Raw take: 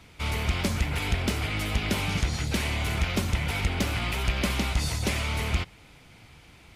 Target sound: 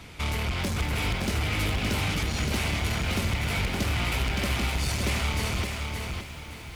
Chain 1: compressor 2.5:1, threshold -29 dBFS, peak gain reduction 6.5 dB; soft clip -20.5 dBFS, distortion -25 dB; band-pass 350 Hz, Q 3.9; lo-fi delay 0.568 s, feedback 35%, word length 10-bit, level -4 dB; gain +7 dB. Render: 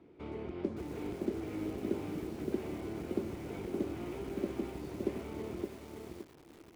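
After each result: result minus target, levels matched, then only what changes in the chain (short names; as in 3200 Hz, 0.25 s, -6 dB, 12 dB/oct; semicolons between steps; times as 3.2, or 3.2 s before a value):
soft clip: distortion -14 dB; 250 Hz band +7.5 dB
change: soft clip -31.5 dBFS, distortion -11 dB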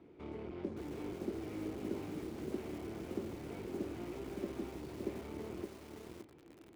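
250 Hz band +7.5 dB
remove: band-pass 350 Hz, Q 3.9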